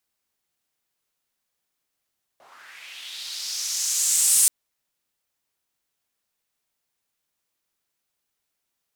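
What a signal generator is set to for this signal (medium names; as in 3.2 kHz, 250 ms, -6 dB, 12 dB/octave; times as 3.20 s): swept filtered noise white, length 2.08 s bandpass, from 600 Hz, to 9 kHz, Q 2.8, linear, gain ramp +28.5 dB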